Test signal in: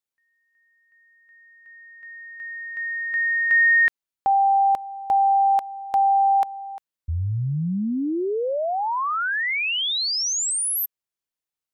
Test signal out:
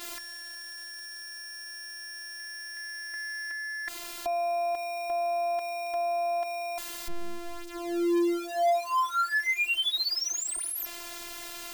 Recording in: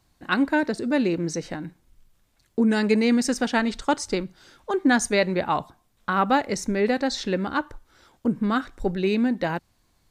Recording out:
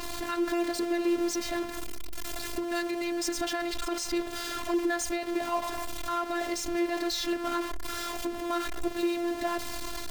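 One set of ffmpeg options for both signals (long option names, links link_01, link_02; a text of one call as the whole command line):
ffmpeg -i in.wav -af "aeval=exprs='val(0)+0.5*0.0794*sgn(val(0))':channel_layout=same,equalizer=frequency=650:width_type=o:width=0.77:gain=2,alimiter=limit=-15dB:level=0:latency=1:release=46,bandreject=frequency=60:width_type=h:width=6,bandreject=frequency=120:width_type=h:width=6,bandreject=frequency=180:width_type=h:width=6,afftfilt=real='hypot(re,im)*cos(PI*b)':imag='0':win_size=512:overlap=0.75,adynamicequalizer=threshold=0.01:dfrequency=5600:dqfactor=0.7:tfrequency=5600:tqfactor=0.7:attack=5:release=100:ratio=0.375:range=3.5:mode=cutabove:tftype=highshelf,volume=-3.5dB" out.wav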